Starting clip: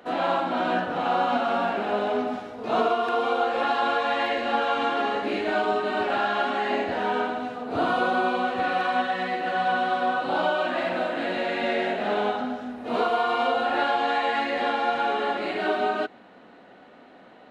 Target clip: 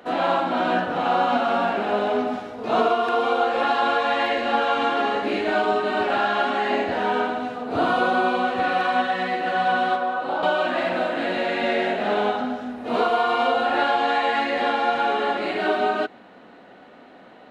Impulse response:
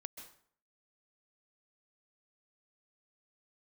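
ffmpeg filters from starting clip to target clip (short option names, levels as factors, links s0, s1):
-filter_complex "[0:a]asettb=1/sr,asplit=3[s0][s1][s2];[s0]atrim=end=9.954[s3];[s1]atrim=start=9.95:end=10.43,asetpts=PTS-STARTPTS,afade=t=in:d=0.004:c=qsin,afade=t=out:st=0.476:d=0.004:c=qsin,acrossover=split=330|1700[s4][s5][s6];[s4]acompressor=threshold=0.00501:ratio=4[s7];[s5]acompressor=threshold=0.0562:ratio=4[s8];[s6]acompressor=threshold=0.00447:ratio=4[s9];[s7][s8][s9]amix=inputs=3:normalize=0[s10];[s2]atrim=start=10.426[s11];[s3][s10]acrossfade=d=0.004:c1=hsin:c2=qsin[s12];[s12][s11]acrossfade=d=0.004:c1=qsin:c2=hsin,volume=1.41"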